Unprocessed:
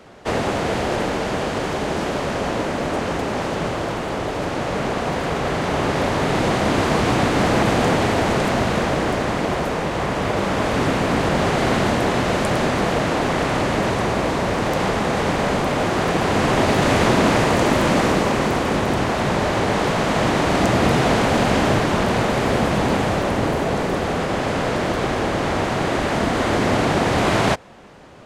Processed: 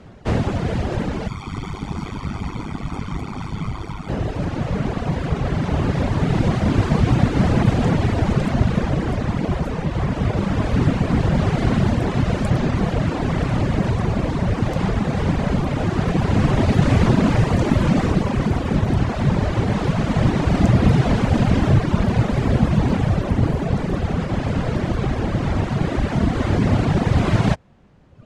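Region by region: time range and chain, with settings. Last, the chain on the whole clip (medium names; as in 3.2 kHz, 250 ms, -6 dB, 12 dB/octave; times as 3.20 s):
1.28–4.09 s: bass shelf 430 Hz -5 dB + comb 0.9 ms, depth 77% + AM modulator 100 Hz, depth 60%
whole clip: Bessel low-pass 9 kHz, order 2; reverb removal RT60 1.5 s; tone controls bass +15 dB, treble -1 dB; trim -3.5 dB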